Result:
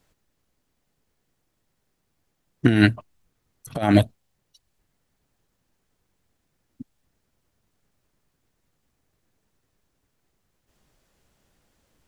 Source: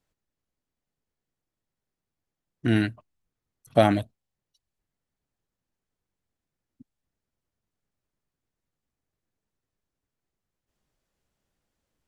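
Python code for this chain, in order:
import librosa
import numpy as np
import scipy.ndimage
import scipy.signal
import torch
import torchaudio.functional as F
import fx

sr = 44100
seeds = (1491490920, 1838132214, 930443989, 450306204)

y = fx.over_compress(x, sr, threshold_db=-24.0, ratio=-0.5)
y = y * librosa.db_to_amplitude(8.5)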